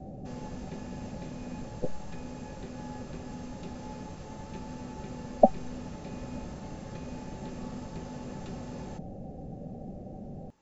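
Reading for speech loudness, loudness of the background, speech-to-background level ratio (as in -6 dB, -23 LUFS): -38.0 LUFS, -45.0 LUFS, 7.0 dB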